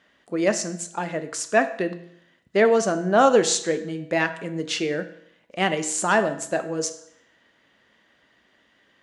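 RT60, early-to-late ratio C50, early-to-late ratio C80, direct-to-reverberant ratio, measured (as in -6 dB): 0.70 s, 12.5 dB, 15.5 dB, 9.0 dB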